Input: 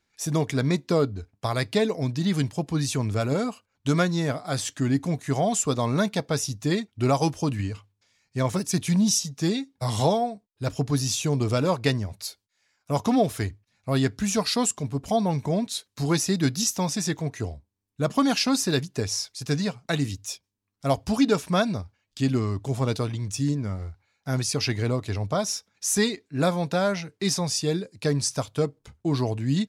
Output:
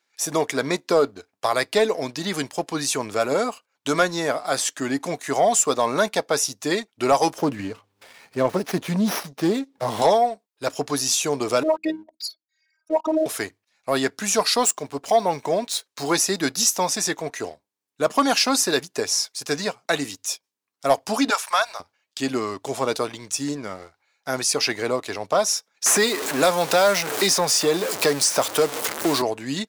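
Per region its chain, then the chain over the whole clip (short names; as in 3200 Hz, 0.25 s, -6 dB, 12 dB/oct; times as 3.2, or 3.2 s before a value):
7.38–10.02 tilt shelf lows +6.5 dB, about 710 Hz + upward compressor, threshold -31 dBFS + running maximum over 5 samples
11.63–13.26 formant sharpening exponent 3 + HPF 110 Hz + robotiser 316 Hz
14.59–16.12 median filter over 3 samples + bell 210 Hz -4 dB 0.31 oct
21.3–21.8 HPF 780 Hz 24 dB/oct + three-band squash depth 70%
25.86–29.22 zero-crossing step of -30 dBFS + three-band squash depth 70%
whole clip: HPF 470 Hz 12 dB/oct; dynamic EQ 3500 Hz, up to -4 dB, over -43 dBFS, Q 0.75; sample leveller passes 1; gain +5 dB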